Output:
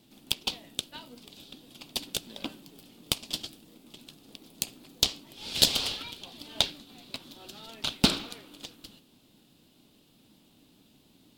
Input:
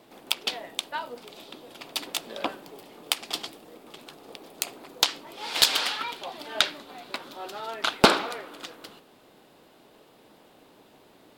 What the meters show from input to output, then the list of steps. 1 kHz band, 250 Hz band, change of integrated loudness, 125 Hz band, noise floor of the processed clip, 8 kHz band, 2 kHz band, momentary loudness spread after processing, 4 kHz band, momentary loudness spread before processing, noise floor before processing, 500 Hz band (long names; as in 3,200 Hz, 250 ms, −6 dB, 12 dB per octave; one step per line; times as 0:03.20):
−13.0 dB, −1.5 dB, −2.5 dB, +2.5 dB, −62 dBFS, −1.5 dB, −9.5 dB, 23 LU, −2.0 dB, 24 LU, −57 dBFS, −10.0 dB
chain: flat-topped bell 890 Hz −14.5 dB 2.8 octaves
in parallel at −10 dB: sample-and-hold swept by an LFO 34×, swing 60% 1.5 Hz
on the sum: level −1.5 dB